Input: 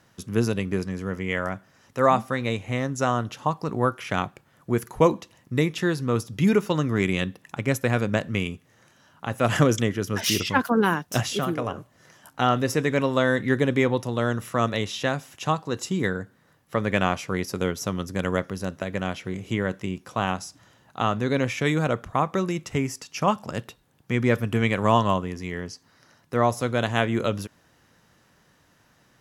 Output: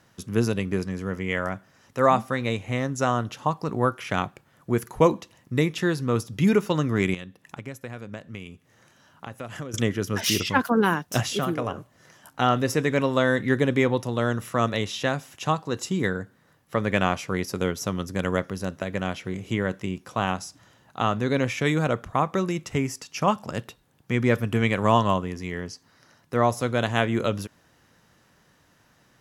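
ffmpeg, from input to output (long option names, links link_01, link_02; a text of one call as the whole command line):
ffmpeg -i in.wav -filter_complex "[0:a]asettb=1/sr,asplit=3[link_01][link_02][link_03];[link_01]atrim=end=7.144[link_04];[link_02]atrim=start=7.14:end=9.74,asetpts=PTS-STARTPTS,afade=type=in:duration=0.004:curve=qsin,afade=type=out:start_time=2.596:duration=0.004:curve=qsin,acompressor=threshold=-36dB:ratio=4[link_05];[link_03]atrim=start=9.736[link_06];[link_04][link_05]acrossfade=duration=0.004:curve1=hsin:curve2=qsin[link_07];[link_07][link_06]acrossfade=duration=0.004:curve1=qsin:curve2=hsin" out.wav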